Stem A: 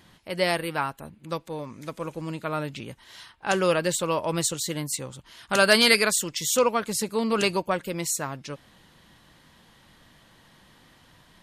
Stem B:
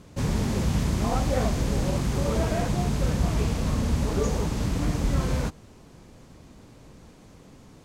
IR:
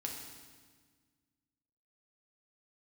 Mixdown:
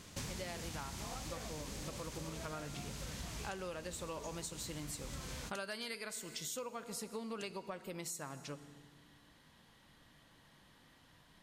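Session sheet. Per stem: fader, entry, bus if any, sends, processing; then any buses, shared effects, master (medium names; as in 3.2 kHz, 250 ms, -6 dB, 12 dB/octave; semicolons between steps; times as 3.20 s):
-11.0 dB, 0.00 s, send -8 dB, none
-1.5 dB, 0.00 s, no send, tilt shelf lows -7.5 dB, about 1.4 kHz; auto duck -11 dB, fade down 1.80 s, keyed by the first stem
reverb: on, RT60 1.5 s, pre-delay 4 ms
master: compression 10:1, threshold -40 dBFS, peak gain reduction 18 dB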